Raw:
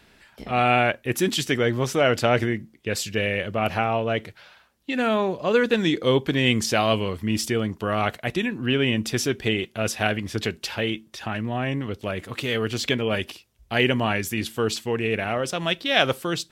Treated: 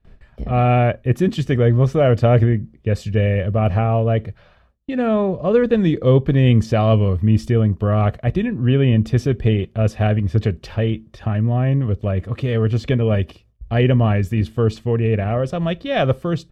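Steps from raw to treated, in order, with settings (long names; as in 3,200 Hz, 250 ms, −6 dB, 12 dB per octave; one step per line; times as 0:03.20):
noise gate with hold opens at −46 dBFS
spectral tilt −4.5 dB per octave
comb filter 1.7 ms, depth 35%
level −1 dB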